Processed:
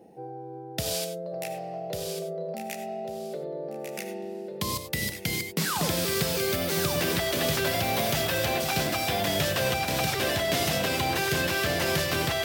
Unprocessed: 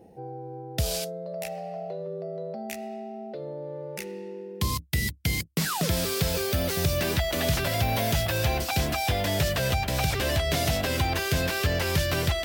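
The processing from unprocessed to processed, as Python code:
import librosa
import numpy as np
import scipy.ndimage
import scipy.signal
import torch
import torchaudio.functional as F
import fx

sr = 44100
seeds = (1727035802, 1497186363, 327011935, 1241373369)

y = scipy.signal.sosfilt(scipy.signal.butter(2, 160.0, 'highpass', fs=sr, output='sos'), x)
y = fx.echo_feedback(y, sr, ms=1146, feedback_pct=23, wet_db=-7.0)
y = fx.rev_gated(y, sr, seeds[0], gate_ms=120, shape='rising', drr_db=8.5)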